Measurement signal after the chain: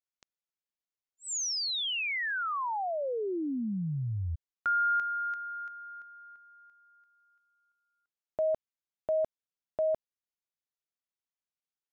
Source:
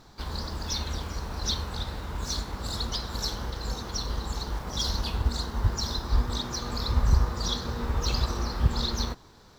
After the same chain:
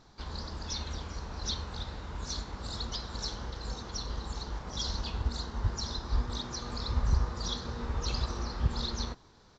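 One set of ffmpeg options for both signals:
-af "aresample=16000,aresample=44100,volume=-5.5dB"

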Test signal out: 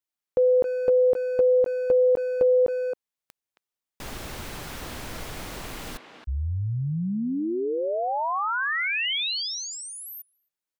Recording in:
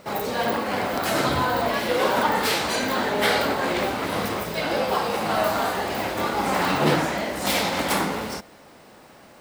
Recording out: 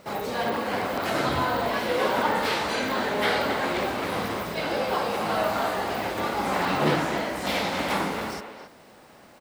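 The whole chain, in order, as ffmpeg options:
-filter_complex "[0:a]acrossover=split=4600[a][b];[b]acompressor=threshold=-38dB:ratio=4:attack=1:release=60[c];[a][c]amix=inputs=2:normalize=0,asplit=2[d][e];[e]adelay=270,highpass=300,lowpass=3.4k,asoftclip=type=hard:threshold=-15dB,volume=-7dB[f];[d][f]amix=inputs=2:normalize=0,volume=-3dB"

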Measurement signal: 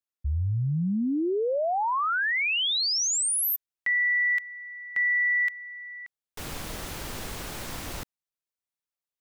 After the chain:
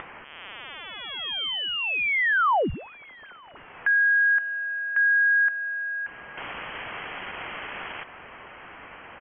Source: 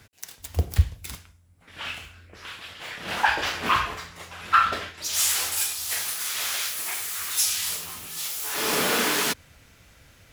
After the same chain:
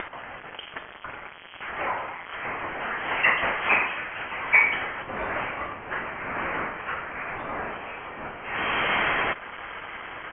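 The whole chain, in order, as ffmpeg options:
-filter_complex "[0:a]aeval=exprs='val(0)+0.5*0.0282*sgn(val(0))':c=same,highpass=f=490:w=0.5412,highpass=f=490:w=1.3066,equalizer=f=640:t=o:w=2.2:g=-12.5,acompressor=mode=upward:threshold=-31dB:ratio=2.5:attack=13:release=428:knee=2.83:detection=peak,asplit=2[a][b];[b]adelay=922,lowpass=f=820:p=1,volume=-18dB,asplit=2[c][d];[d]adelay=922,lowpass=f=820:p=1,volume=0.38,asplit=2[e][f];[f]adelay=922,lowpass=f=820:p=1,volume=0.38[g];[a][c][e][g]amix=inputs=4:normalize=0,acontrast=59,lowpass=f=3.1k:t=q:w=0.5098,lowpass=f=3.1k:t=q:w=0.6013,lowpass=f=3.1k:t=q:w=0.9,lowpass=f=3.1k:t=q:w=2.563,afreqshift=-3600"

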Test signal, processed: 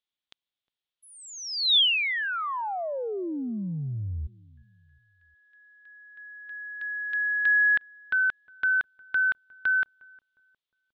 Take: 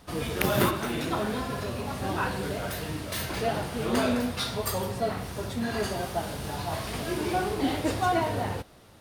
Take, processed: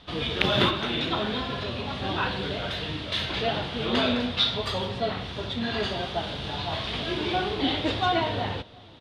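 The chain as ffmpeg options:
-filter_complex "[0:a]lowpass=f=3.5k:t=q:w=4.3,asplit=2[a][b];[b]adelay=358,lowpass=f=800:p=1,volume=-22dB,asplit=2[c][d];[d]adelay=358,lowpass=f=800:p=1,volume=0.45,asplit=2[e][f];[f]adelay=358,lowpass=f=800:p=1,volume=0.45[g];[a][c][e][g]amix=inputs=4:normalize=0"

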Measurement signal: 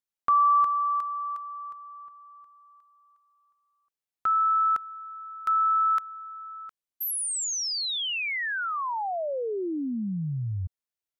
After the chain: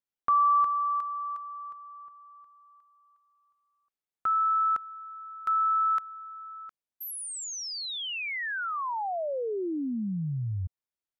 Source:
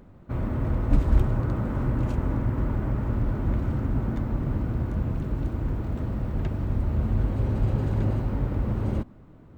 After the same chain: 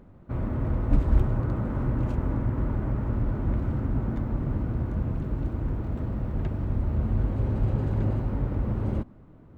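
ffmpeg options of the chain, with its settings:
-af "highshelf=f=2.9k:g=-7,volume=-1dB"

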